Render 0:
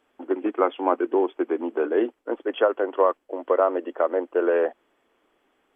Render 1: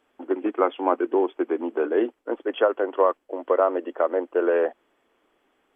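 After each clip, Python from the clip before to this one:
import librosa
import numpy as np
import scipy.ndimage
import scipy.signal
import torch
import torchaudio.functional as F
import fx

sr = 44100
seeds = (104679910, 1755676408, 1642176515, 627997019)

y = x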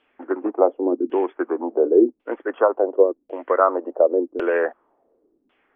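y = fx.filter_lfo_lowpass(x, sr, shape='saw_down', hz=0.91, low_hz=230.0, high_hz=3000.0, q=2.8)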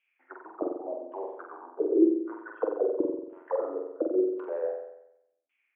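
y = fx.auto_wah(x, sr, base_hz=320.0, top_hz=2400.0, q=9.1, full_db=-13.0, direction='down')
y = fx.room_flutter(y, sr, wall_m=7.9, rt60_s=0.82)
y = F.gain(torch.from_numpy(y), -2.5).numpy()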